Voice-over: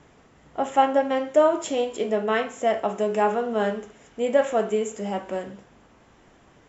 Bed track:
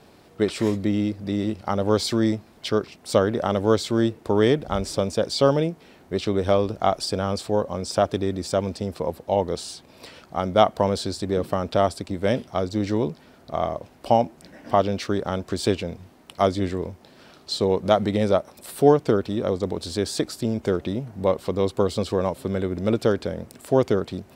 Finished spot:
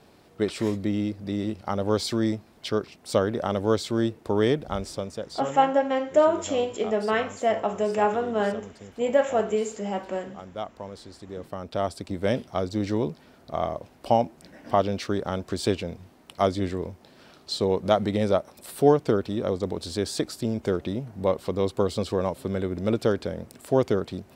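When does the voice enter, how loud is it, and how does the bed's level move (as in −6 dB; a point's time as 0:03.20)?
4.80 s, −1.0 dB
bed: 0:04.68 −3.5 dB
0:05.61 −17 dB
0:11.12 −17 dB
0:12.12 −2.5 dB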